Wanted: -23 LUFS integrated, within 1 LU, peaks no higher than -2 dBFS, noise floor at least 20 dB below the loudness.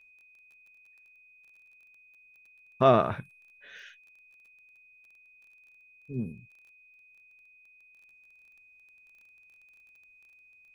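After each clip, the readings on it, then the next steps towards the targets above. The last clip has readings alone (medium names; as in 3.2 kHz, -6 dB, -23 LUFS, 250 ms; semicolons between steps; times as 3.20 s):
tick rate 20 per s; steady tone 2.5 kHz; tone level -56 dBFS; loudness -27.0 LUFS; peak level -7.5 dBFS; loudness target -23.0 LUFS
-> de-click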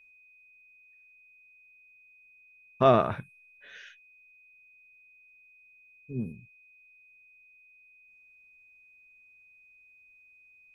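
tick rate 0.093 per s; steady tone 2.5 kHz; tone level -56 dBFS
-> band-stop 2.5 kHz, Q 30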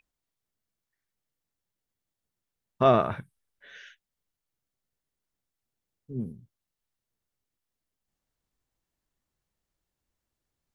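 steady tone not found; loudness -25.5 LUFS; peak level -7.5 dBFS; loudness target -23.0 LUFS
-> trim +2.5 dB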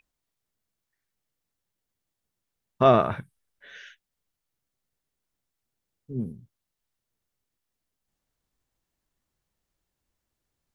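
loudness -23.0 LUFS; peak level -5.0 dBFS; noise floor -85 dBFS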